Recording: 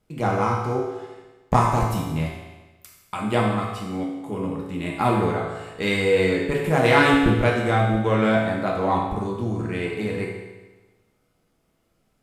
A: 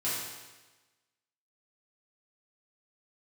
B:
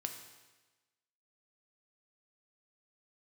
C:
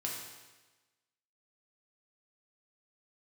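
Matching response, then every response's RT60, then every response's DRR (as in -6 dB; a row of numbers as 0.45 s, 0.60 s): C; 1.2 s, 1.2 s, 1.2 s; -10.5 dB, 4.5 dB, -3.0 dB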